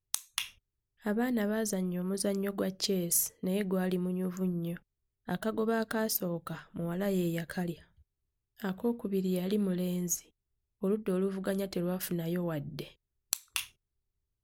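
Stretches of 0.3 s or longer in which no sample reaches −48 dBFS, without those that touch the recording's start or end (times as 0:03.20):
0:00.50–0:01.03
0:04.78–0:05.28
0:07.82–0:08.60
0:10.20–0:10.82
0:12.92–0:13.33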